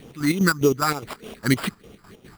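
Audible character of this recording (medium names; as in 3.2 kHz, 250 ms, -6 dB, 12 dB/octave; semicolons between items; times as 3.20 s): phasing stages 4, 3.3 Hz, lowest notch 460–1900 Hz; aliases and images of a low sample rate 6.2 kHz, jitter 0%; chopped level 4.9 Hz, depth 60%, duty 55%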